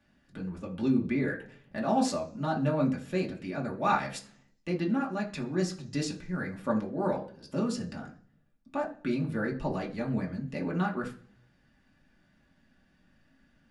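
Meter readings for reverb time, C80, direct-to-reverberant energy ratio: 0.50 s, 17.0 dB, −2.0 dB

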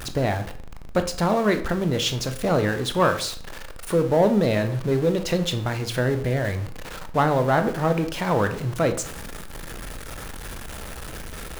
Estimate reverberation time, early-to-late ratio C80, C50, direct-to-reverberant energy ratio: 0.50 s, 16.0 dB, 12.5 dB, 7.5 dB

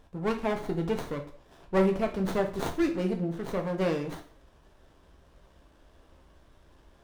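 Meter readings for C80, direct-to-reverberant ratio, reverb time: 15.0 dB, 3.0 dB, 0.50 s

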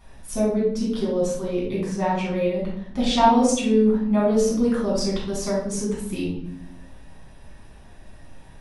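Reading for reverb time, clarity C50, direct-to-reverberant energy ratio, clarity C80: 0.75 s, 2.0 dB, −7.0 dB, 7.0 dB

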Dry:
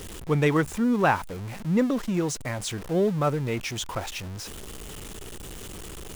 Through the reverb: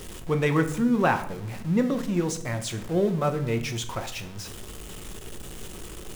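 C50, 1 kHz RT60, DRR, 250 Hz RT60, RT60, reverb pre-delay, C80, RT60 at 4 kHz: 12.5 dB, 0.55 s, 6.5 dB, 1.0 s, 0.65 s, 5 ms, 15.0 dB, 0.50 s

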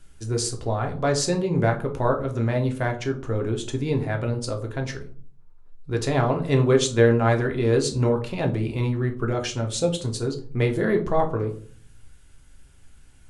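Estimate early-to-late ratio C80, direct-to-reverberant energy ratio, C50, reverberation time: 16.5 dB, 2.5 dB, 12.0 dB, 0.50 s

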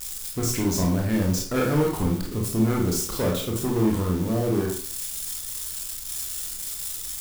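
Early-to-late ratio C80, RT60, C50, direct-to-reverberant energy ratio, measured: 8.5 dB, 0.45 s, 4.5 dB, −1.5 dB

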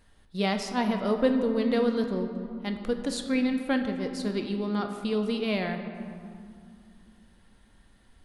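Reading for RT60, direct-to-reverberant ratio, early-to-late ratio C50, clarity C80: 2.4 s, 5.0 dB, 7.0 dB, 8.0 dB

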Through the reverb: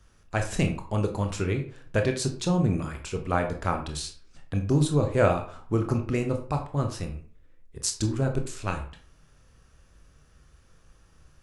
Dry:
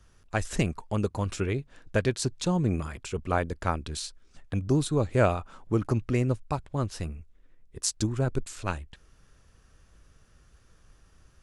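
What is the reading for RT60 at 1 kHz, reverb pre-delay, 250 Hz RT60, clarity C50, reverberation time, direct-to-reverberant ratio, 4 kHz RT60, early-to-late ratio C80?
0.45 s, 20 ms, 0.45 s, 10.0 dB, 0.45 s, 4.0 dB, 0.30 s, 14.0 dB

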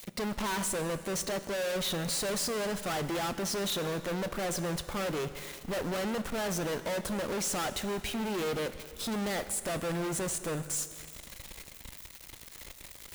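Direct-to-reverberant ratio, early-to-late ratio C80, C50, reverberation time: 11.0 dB, 13.5 dB, 12.5 dB, 2.0 s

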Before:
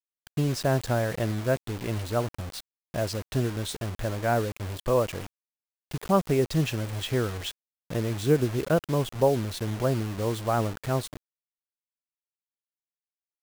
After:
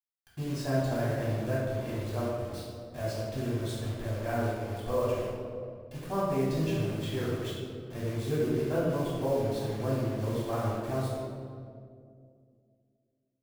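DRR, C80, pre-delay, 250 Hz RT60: −8.5 dB, 1.5 dB, 3 ms, 2.9 s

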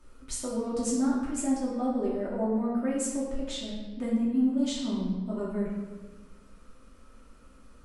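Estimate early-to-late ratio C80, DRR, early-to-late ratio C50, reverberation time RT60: 4.0 dB, −8.0 dB, 1.0 dB, 1.3 s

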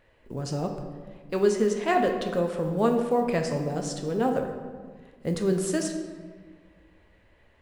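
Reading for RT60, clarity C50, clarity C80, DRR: 1.6 s, 6.0 dB, 8.0 dB, 3.5 dB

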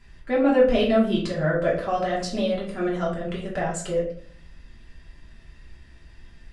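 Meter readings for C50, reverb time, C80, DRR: 5.5 dB, 0.55 s, 10.0 dB, −5.5 dB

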